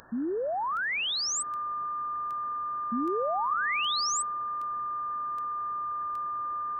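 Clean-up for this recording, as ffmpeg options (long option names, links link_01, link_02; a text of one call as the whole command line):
ffmpeg -i in.wav -af "adeclick=threshold=4,bandreject=frequency=1200:width=30,afwtdn=0.0063" out.wav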